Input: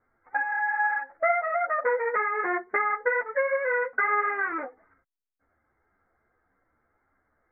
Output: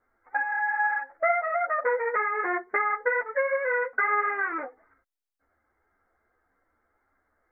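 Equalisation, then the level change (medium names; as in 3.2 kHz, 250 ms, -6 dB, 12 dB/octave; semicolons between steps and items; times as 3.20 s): peaking EQ 140 Hz -10 dB 0.99 oct; 0.0 dB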